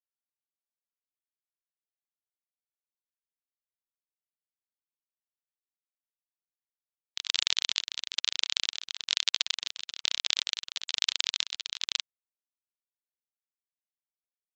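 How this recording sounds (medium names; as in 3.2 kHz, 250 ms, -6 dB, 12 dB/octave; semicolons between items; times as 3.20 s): chopped level 1.1 Hz, depth 60%, duty 60%; a quantiser's noise floor 6-bit, dither none; AAC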